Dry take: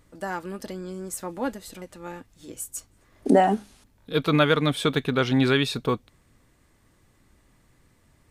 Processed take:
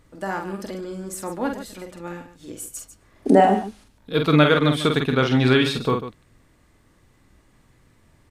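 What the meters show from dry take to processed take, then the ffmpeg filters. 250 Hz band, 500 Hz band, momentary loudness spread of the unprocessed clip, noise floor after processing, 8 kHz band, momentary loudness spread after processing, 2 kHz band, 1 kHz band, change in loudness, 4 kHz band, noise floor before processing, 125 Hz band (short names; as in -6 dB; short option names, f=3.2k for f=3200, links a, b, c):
+4.0 dB, +4.0 dB, 20 LU, -59 dBFS, +0.5 dB, 20 LU, +3.5 dB, +4.0 dB, +4.0 dB, +3.0 dB, -62 dBFS, +4.5 dB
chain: -af "highshelf=f=6.2k:g=-5,aecho=1:1:46.65|145.8:0.562|0.251,volume=2.5dB"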